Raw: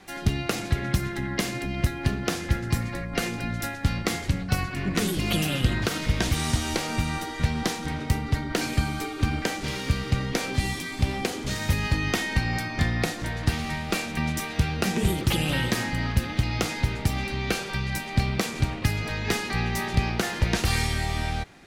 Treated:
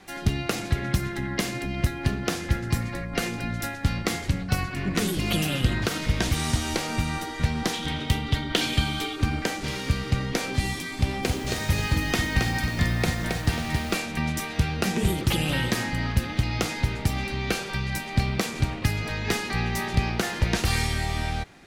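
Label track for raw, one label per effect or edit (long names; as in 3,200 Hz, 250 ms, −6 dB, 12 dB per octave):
7.730000	9.160000	parametric band 3,300 Hz +13.5 dB 0.51 octaves
10.960000	13.940000	feedback echo at a low word length 271 ms, feedback 35%, word length 7 bits, level −4 dB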